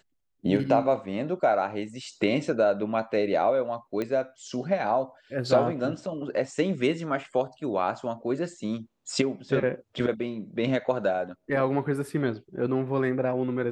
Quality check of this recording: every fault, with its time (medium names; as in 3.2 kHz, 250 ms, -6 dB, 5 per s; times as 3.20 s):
4.02 s: pop -18 dBFS